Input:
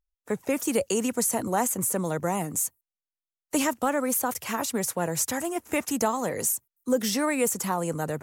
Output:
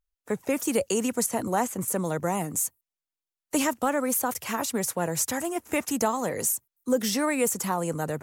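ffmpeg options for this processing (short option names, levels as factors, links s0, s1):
-filter_complex "[0:a]asettb=1/sr,asplit=3[s0][s1][s2];[s0]atrim=end=1.264[s3];[s1]atrim=start=1.26:end=1.88,asetpts=PTS-STARTPTS,afade=t=in:d=0.004:c=qsin,afade=t=out:st=0.616:d=0.004:c=qsin,acrossover=split=4800[s4][s5];[s5]acompressor=threshold=0.0178:ratio=4:attack=1:release=60[s6];[s4][s6]amix=inputs=2:normalize=0[s7];[s2]atrim=start=1.876[s8];[s3][s7]acrossfade=d=0.004:c1=hsin:c2=qsin[s9];[s9][s8]acrossfade=d=0.004:c1=qsin:c2=hsin"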